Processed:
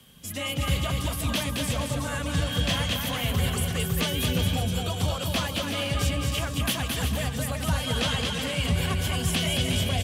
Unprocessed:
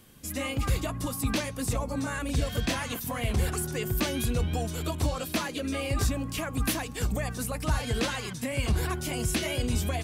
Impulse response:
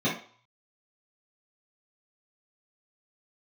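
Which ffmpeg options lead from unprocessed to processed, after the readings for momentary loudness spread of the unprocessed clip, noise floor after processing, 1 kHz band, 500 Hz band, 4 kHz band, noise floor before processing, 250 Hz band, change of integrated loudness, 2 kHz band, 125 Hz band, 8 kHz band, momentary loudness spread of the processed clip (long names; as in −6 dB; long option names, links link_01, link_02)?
4 LU, −33 dBFS, +2.0 dB, +1.0 dB, +8.5 dB, −38 dBFS, +1.5 dB, +3.5 dB, +3.5 dB, +4.0 dB, +2.5 dB, 3 LU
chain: -af "equalizer=frequency=160:width_type=o:width=0.33:gain=6,equalizer=frequency=315:width_type=o:width=0.33:gain=-11,equalizer=frequency=3150:width_type=o:width=0.33:gain=10,afreqshift=14,aecho=1:1:220|363|456|516.4|555.6:0.631|0.398|0.251|0.158|0.1"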